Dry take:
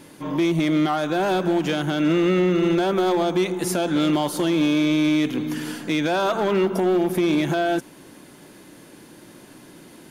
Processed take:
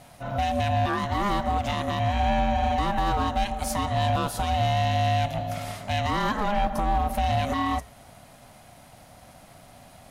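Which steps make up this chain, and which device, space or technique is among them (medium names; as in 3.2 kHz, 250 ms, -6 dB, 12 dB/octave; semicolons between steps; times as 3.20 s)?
alien voice (ring modulator 410 Hz; flange 0.43 Hz, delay 5.4 ms, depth 3.8 ms, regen -84%); trim +3.5 dB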